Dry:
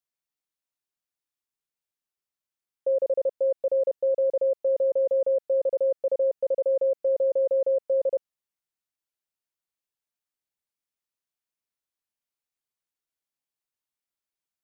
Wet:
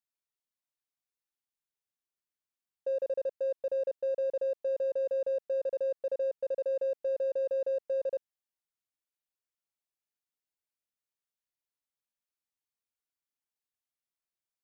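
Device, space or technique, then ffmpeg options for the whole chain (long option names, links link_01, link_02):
parallel distortion: -filter_complex "[0:a]asplit=2[link_01][link_02];[link_02]asoftclip=type=hard:threshold=-34.5dB,volume=-10.5dB[link_03];[link_01][link_03]amix=inputs=2:normalize=0,volume=-8dB"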